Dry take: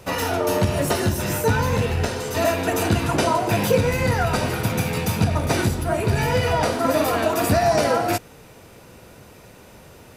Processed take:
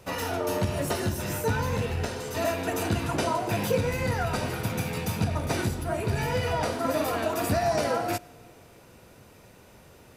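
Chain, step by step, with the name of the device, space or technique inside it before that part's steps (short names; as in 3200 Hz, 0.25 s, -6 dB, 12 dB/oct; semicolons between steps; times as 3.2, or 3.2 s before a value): compressed reverb return (on a send at -14 dB: reverb RT60 1.2 s, pre-delay 76 ms + compressor, threshold -27 dBFS, peak gain reduction 14 dB); on the sum: gain -7 dB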